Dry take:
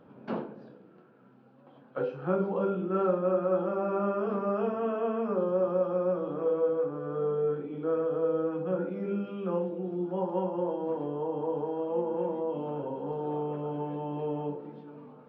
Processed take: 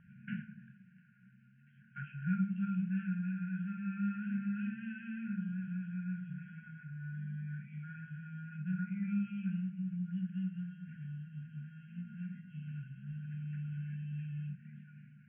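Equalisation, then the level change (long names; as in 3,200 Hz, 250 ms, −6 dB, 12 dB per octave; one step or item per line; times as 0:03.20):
linear-phase brick-wall band-stop 220–1,400 Hz
Butterworth low-pass 2,800 Hz 72 dB per octave
+1.5 dB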